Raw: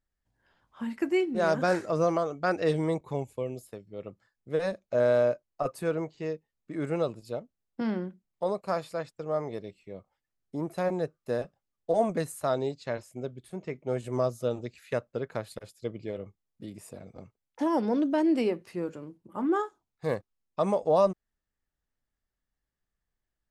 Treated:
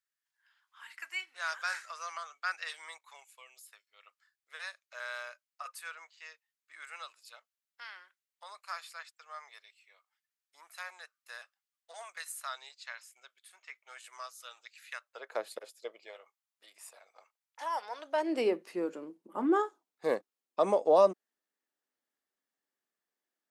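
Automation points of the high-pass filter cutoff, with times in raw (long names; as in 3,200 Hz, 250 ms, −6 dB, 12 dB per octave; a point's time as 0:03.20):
high-pass filter 24 dB per octave
0:15.01 1,300 Hz
0:15.45 330 Hz
0:16.21 850 Hz
0:17.98 850 Hz
0:18.51 260 Hz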